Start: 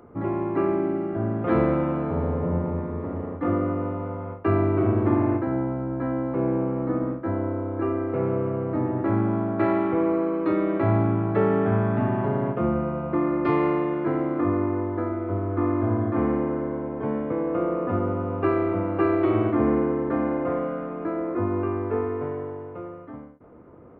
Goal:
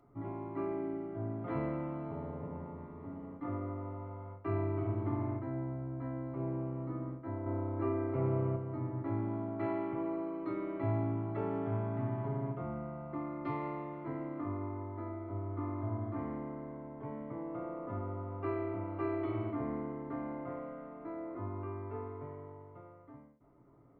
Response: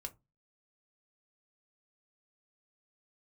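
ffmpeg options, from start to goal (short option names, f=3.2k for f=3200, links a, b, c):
-filter_complex "[0:a]asettb=1/sr,asplit=3[a][b][c];[a]atrim=end=7.464[d];[b]atrim=start=7.46:end=8.56,asetpts=PTS-STARTPTS,afade=t=in:d=0.004:c=qsin,afade=t=out:st=1.096:d=0.004:c=qsin,acontrast=37[e];[c]atrim=start=8.556[f];[d][e]acrossfade=d=0.004:c1=hsin:c2=qsin[g];[g][f]acrossfade=d=0.004:c1=qsin:c2=hsin[h];[1:a]atrim=start_sample=2205,asetrate=83790,aresample=44100[i];[h][i]afir=irnorm=-1:irlink=0,volume=-6dB"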